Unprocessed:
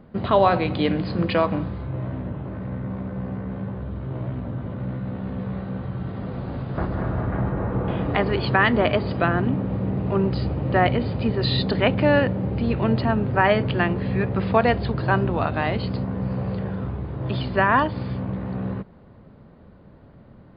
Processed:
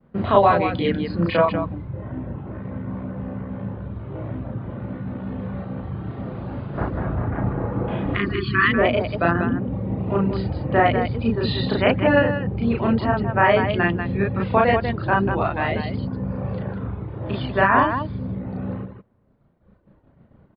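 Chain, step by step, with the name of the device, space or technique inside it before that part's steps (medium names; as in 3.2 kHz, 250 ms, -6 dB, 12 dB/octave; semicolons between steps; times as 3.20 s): hearing-loss simulation (low-pass 3.2 kHz 12 dB/octave; expander -41 dBFS); reverb removal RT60 1.6 s; 8.14–8.69 s: Chebyshev band-stop 380–1100 Hz, order 4; loudspeakers at several distances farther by 12 m 0 dB, 66 m -6 dB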